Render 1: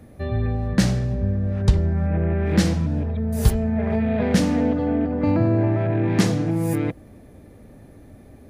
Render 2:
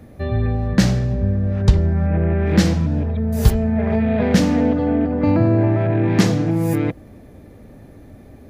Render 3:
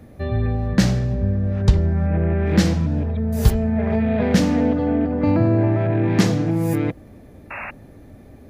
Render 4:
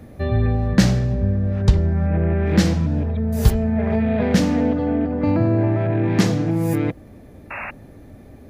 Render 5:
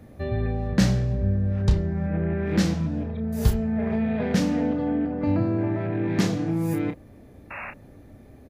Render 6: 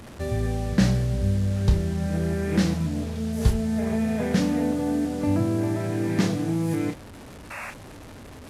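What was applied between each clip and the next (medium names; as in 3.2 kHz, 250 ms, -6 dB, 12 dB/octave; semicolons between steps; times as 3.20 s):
peaking EQ 9.4 kHz -6.5 dB 0.43 oct; trim +3.5 dB
painted sound noise, 7.50–7.71 s, 530–2800 Hz -30 dBFS; trim -1.5 dB
gain riding within 4 dB 2 s
doubling 31 ms -7.5 dB; trim -6 dB
one-bit delta coder 64 kbps, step -36.5 dBFS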